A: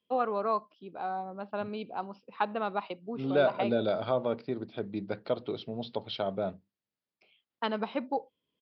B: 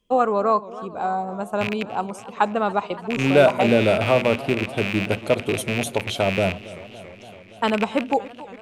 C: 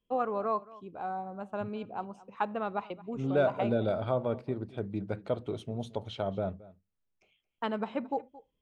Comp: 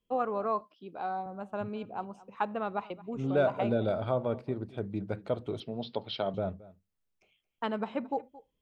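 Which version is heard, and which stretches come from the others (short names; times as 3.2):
C
0.61–1.26 from A
5.6–6.34 from A
not used: B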